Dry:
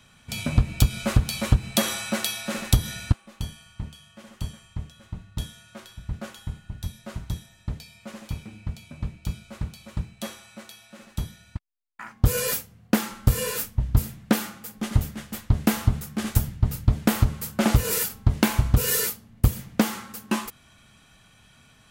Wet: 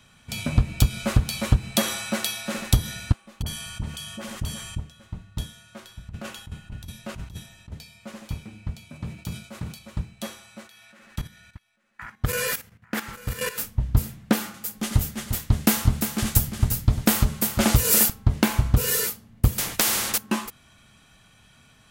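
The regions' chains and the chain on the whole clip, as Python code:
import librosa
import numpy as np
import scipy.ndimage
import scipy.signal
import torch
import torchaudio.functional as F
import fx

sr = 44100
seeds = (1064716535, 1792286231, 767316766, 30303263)

y = fx.chain(x, sr, fx.high_shelf(hz=5900.0, db=6.0),
    fx.dispersion(late='highs', ms=44.0, hz=970.0),
    fx.env_flatten(amount_pct=50), at=(3.42, 4.8))
y = fx.chain(y, sr, fx.peak_eq(hz=2700.0, db=5.5, octaves=0.24),
    fx.over_compress(threshold_db=-36.0, ratio=-1.0), at=(6.09, 7.72))
y = fx.chain(y, sr, fx.highpass(hz=100.0, slope=12),
    fx.high_shelf(hz=9700.0, db=5.0),
    fx.sustainer(db_per_s=110.0), at=(8.9, 9.79))
y = fx.chain(y, sr, fx.peak_eq(hz=1800.0, db=8.5, octaves=1.3),
    fx.level_steps(step_db=13),
    fx.echo_single(ms=843, db=-19.0), at=(10.67, 13.58))
y = fx.chain(y, sr, fx.high_shelf(hz=3300.0, db=8.5),
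    fx.echo_single(ms=350, db=-8.5), at=(14.54, 18.1))
y = fx.chain(y, sr, fx.high_shelf(hz=5700.0, db=11.5),
    fx.spectral_comp(ratio=4.0), at=(19.58, 20.18))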